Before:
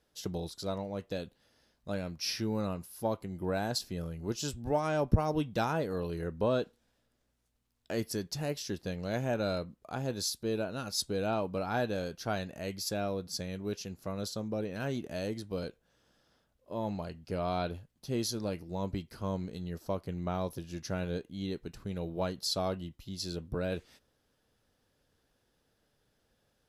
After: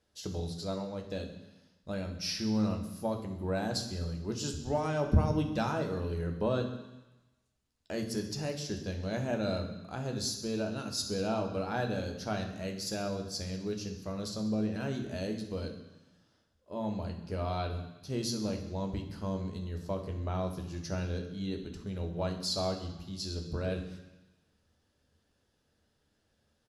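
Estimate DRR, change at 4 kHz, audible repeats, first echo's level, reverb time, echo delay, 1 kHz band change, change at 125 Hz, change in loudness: 4.5 dB, 0.0 dB, 2, −14.5 dB, 1.0 s, 65 ms, −1.5 dB, +2.0 dB, +0.5 dB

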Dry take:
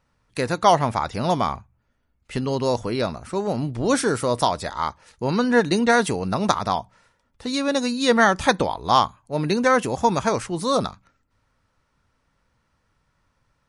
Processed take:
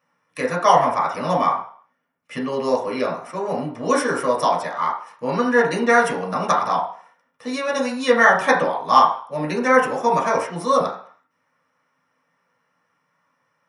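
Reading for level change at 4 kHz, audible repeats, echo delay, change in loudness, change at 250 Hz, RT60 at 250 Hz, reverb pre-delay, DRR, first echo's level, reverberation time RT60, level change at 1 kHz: −4.0 dB, no echo audible, no echo audible, +2.0 dB, −2.5 dB, 0.40 s, 3 ms, −3.5 dB, no echo audible, 0.50 s, +3.5 dB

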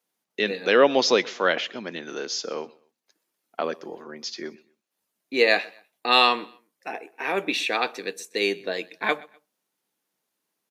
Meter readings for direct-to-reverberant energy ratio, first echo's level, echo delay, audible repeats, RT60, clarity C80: no reverb audible, −23.0 dB, 125 ms, 2, no reverb audible, no reverb audible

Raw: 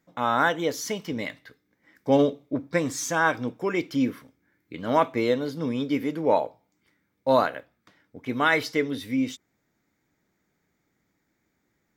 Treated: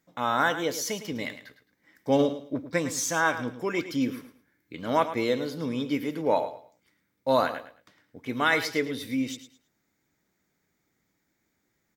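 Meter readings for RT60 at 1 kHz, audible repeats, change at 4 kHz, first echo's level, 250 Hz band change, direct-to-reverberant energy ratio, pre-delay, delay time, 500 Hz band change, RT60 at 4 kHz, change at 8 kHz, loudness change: no reverb audible, 2, +0.5 dB, −12.0 dB, −2.5 dB, no reverb audible, no reverb audible, 108 ms, −2.5 dB, no reverb audible, +2.0 dB, −2.0 dB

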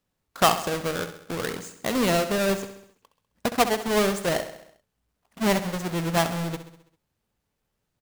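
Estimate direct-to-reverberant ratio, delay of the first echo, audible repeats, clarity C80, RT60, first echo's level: no reverb audible, 66 ms, 5, no reverb audible, no reverb audible, −11.5 dB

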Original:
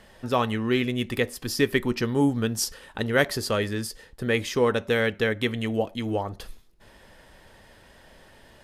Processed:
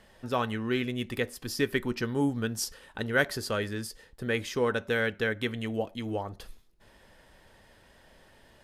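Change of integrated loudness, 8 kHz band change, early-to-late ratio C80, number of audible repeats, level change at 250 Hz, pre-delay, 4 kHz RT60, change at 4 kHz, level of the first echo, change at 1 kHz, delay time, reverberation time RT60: −5.0 dB, −5.5 dB, no reverb audible, no echo audible, −5.5 dB, no reverb audible, no reverb audible, −5.5 dB, no echo audible, −5.0 dB, no echo audible, no reverb audible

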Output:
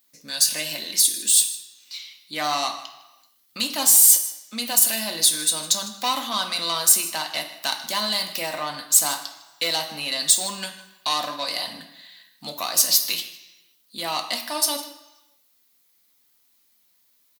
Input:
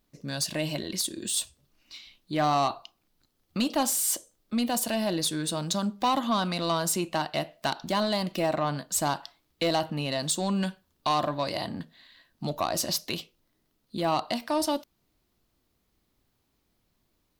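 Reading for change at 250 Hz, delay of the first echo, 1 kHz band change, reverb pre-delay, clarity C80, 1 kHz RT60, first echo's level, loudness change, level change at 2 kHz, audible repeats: −8.0 dB, 156 ms, −0.5 dB, 3 ms, 11.5 dB, 1.1 s, −17.5 dB, +8.5 dB, +5.5 dB, 1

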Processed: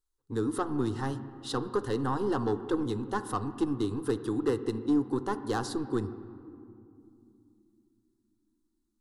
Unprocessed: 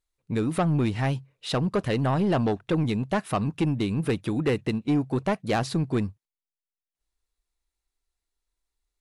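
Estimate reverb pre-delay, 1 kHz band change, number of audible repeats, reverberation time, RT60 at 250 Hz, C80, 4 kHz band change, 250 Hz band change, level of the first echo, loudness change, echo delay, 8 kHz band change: 3 ms, −3.5 dB, no echo audible, 2.6 s, 4.1 s, 13.5 dB, −7.0 dB, −4.5 dB, no echo audible, −5.0 dB, no echo audible, −2.5 dB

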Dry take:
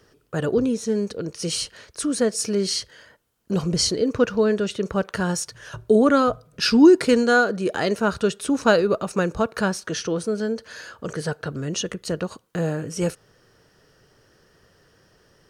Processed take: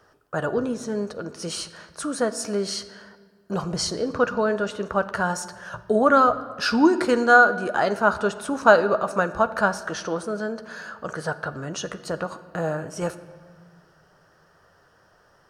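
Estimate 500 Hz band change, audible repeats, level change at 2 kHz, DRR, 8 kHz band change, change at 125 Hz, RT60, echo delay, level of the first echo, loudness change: −1.5 dB, no echo audible, +4.0 dB, 9.5 dB, −5.0 dB, −5.5 dB, 1.6 s, no echo audible, no echo audible, −1.0 dB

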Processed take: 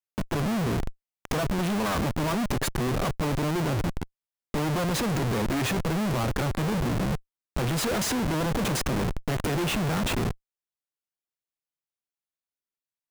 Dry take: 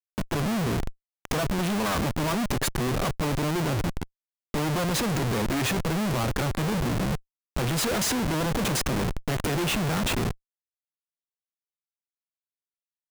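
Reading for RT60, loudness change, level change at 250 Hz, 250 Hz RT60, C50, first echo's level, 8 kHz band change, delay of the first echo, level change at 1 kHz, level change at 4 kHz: no reverb audible, −0.5 dB, 0.0 dB, no reverb audible, no reverb audible, no echo audible, −3.0 dB, no echo audible, −0.5 dB, −2.5 dB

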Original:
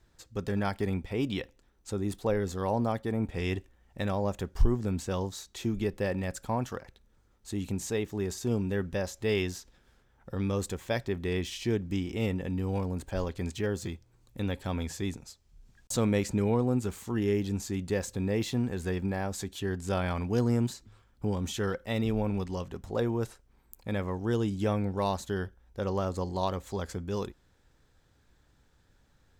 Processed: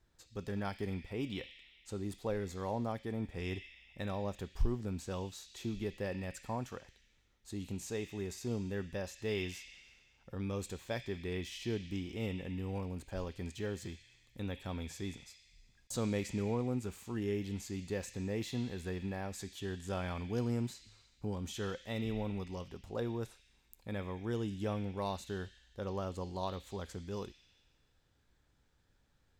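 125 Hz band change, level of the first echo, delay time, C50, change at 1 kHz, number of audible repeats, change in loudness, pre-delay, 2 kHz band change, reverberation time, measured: −8.0 dB, no echo audible, no echo audible, 8.0 dB, −8.0 dB, no echo audible, −8.0 dB, 4 ms, −7.0 dB, 1.7 s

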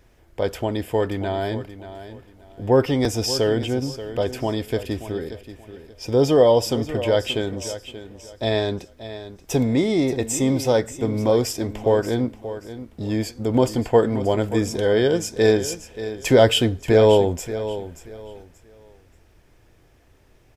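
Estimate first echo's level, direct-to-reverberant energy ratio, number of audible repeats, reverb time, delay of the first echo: −13.0 dB, no reverb audible, 2, no reverb audible, 581 ms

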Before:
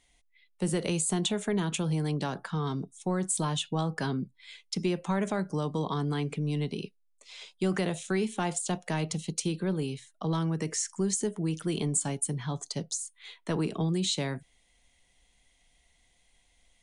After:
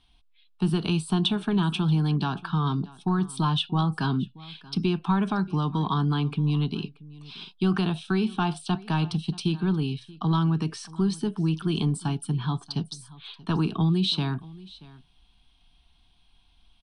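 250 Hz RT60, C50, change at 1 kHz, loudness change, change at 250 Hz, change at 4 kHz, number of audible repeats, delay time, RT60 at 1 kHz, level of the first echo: no reverb audible, no reverb audible, +5.5 dB, +4.5 dB, +5.5 dB, +5.0 dB, 1, 631 ms, no reverb audible, −21.0 dB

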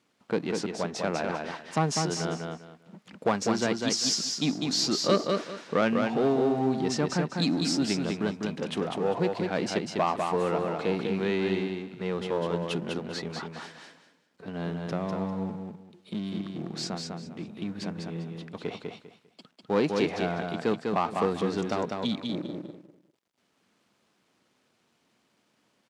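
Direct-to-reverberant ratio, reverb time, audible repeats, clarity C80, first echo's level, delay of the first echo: no reverb audible, no reverb audible, 3, no reverb audible, −4.0 dB, 199 ms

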